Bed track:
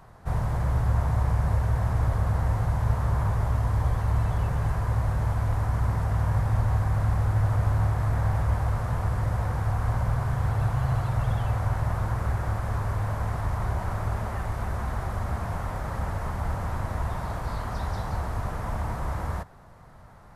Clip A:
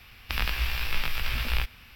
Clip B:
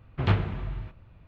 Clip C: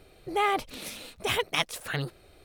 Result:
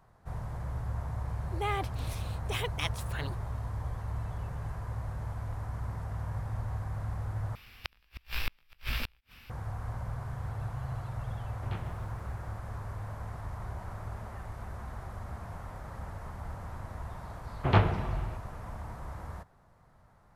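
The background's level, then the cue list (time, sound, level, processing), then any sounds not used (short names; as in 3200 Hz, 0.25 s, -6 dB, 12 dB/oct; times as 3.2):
bed track -11.5 dB
1.25 add C -7.5 dB
7.55 replace with A -3 dB + flipped gate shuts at -15 dBFS, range -37 dB
11.44 add B -16 dB + lo-fi delay 0.146 s, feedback 55%, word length 7-bit, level -13 dB
17.46 add B -1 dB + bell 780 Hz +8 dB 1.6 oct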